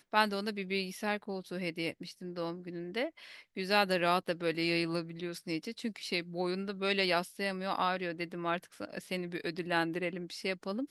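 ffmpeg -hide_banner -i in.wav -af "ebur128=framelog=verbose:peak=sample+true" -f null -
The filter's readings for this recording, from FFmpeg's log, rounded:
Integrated loudness:
  I:         -34.3 LUFS
  Threshold: -44.4 LUFS
Loudness range:
  LRA:         3.2 LU
  Threshold: -54.2 LUFS
  LRA low:   -36.2 LUFS
  LRA high:  -33.0 LUFS
Sample peak:
  Peak:      -11.2 dBFS
True peak:
  Peak:      -11.2 dBFS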